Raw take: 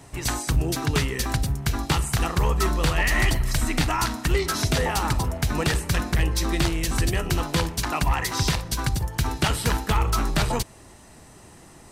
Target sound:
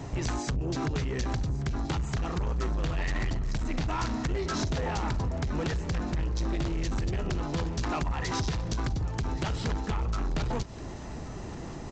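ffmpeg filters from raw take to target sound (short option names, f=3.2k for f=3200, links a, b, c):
-af "tiltshelf=f=850:g=4.5,acompressor=threshold=-29dB:ratio=6,aresample=16000,asoftclip=type=tanh:threshold=-32dB,aresample=44100,aecho=1:1:1127|2254|3381|4508:0.112|0.0595|0.0315|0.0167,volume=6.5dB"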